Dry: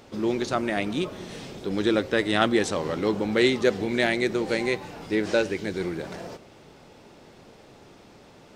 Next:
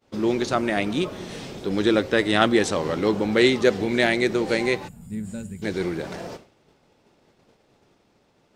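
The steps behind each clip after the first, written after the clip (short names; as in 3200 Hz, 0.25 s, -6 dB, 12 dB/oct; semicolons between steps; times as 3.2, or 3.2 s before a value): expander -40 dBFS; spectral gain 4.88–5.62, 240–6800 Hz -23 dB; gain +3 dB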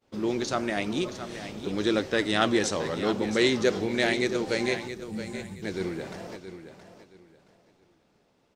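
dynamic EQ 5800 Hz, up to +7 dB, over -45 dBFS, Q 1.4; flange 0.94 Hz, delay 1.6 ms, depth 9.6 ms, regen +88%; on a send: feedback echo 0.672 s, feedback 25%, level -11 dB; on the sum: gain -1 dB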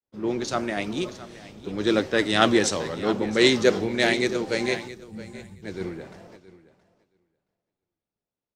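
three-band expander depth 70%; gain +2 dB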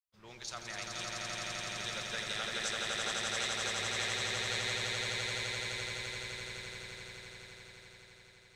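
passive tone stack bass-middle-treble 10-0-10; compressor, threshold -31 dBFS, peak gain reduction 12 dB; on a send: swelling echo 85 ms, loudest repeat 8, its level -3.5 dB; on the sum: gain -6 dB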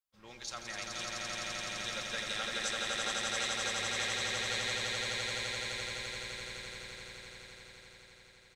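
comb 3.7 ms, depth 38%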